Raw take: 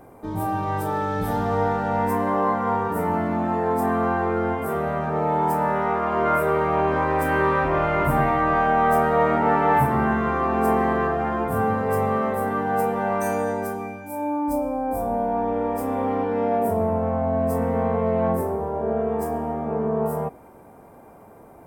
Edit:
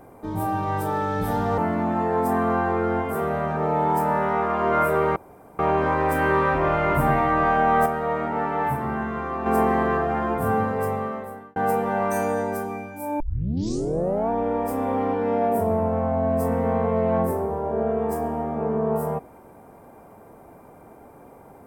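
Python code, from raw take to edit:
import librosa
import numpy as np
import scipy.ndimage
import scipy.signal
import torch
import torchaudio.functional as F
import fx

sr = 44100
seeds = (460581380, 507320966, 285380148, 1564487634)

y = fx.edit(x, sr, fx.cut(start_s=1.58, length_s=1.53),
    fx.insert_room_tone(at_s=6.69, length_s=0.43),
    fx.clip_gain(start_s=8.96, length_s=1.6, db=-6.0),
    fx.fade_out_span(start_s=11.68, length_s=0.98),
    fx.tape_start(start_s=14.3, length_s=1.1), tone=tone)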